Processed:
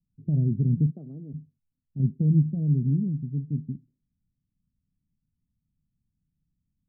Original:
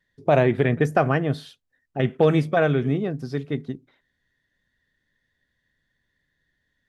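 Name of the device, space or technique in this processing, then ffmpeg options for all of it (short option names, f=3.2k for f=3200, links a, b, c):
the neighbour's flat through the wall: -filter_complex "[0:a]lowpass=f=220:w=0.5412,lowpass=f=220:w=1.3066,equalizer=f=180:t=o:w=0.77:g=4.5,asplit=3[a][b][c];[a]afade=t=out:st=0.9:d=0.02[d];[b]highpass=420,afade=t=in:st=0.9:d=0.02,afade=t=out:st=1.33:d=0.02[e];[c]afade=t=in:st=1.33:d=0.02[f];[d][e][f]amix=inputs=3:normalize=0"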